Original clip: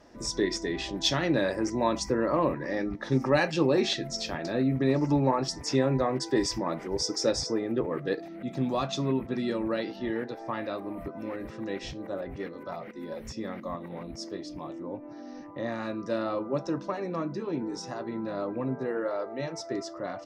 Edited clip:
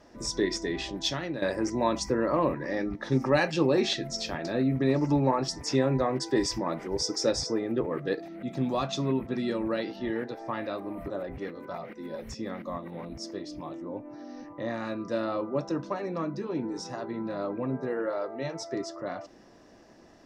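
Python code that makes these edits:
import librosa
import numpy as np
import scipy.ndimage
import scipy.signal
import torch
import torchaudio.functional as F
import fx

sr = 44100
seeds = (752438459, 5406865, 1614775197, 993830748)

y = fx.edit(x, sr, fx.fade_out_to(start_s=0.79, length_s=0.63, floor_db=-11.5),
    fx.cut(start_s=11.1, length_s=0.98), tone=tone)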